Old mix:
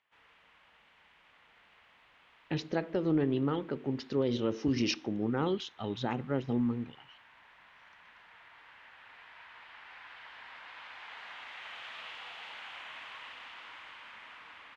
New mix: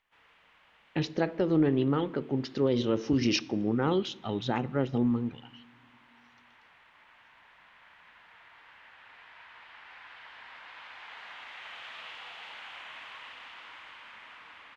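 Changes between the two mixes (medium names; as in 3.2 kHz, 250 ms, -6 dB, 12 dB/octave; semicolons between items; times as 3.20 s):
speech: entry -1.55 s; reverb: on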